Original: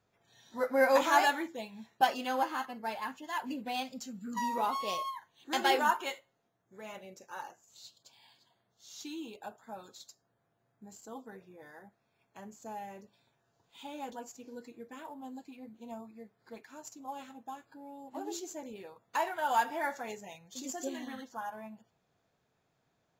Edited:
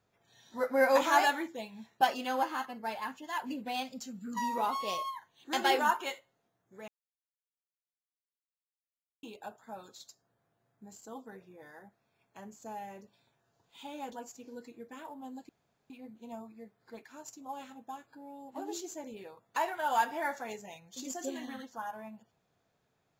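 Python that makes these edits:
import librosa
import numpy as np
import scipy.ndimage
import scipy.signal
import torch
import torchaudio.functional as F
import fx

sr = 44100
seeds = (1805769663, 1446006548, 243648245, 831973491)

y = fx.edit(x, sr, fx.silence(start_s=6.88, length_s=2.35),
    fx.insert_room_tone(at_s=15.49, length_s=0.41), tone=tone)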